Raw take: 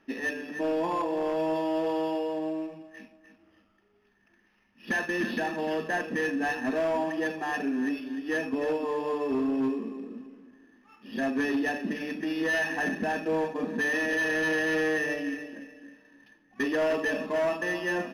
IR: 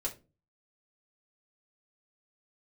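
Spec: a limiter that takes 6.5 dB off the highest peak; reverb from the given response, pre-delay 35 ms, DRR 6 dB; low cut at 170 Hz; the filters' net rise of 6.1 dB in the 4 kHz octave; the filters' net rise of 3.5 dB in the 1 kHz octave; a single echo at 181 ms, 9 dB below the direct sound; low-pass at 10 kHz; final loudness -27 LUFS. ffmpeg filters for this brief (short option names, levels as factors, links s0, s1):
-filter_complex "[0:a]highpass=170,lowpass=10000,equalizer=f=1000:t=o:g=4,equalizer=f=4000:t=o:g=8.5,alimiter=limit=0.075:level=0:latency=1,aecho=1:1:181:0.355,asplit=2[s0][s1];[1:a]atrim=start_sample=2205,adelay=35[s2];[s1][s2]afir=irnorm=-1:irlink=0,volume=0.398[s3];[s0][s3]amix=inputs=2:normalize=0,volume=1.26"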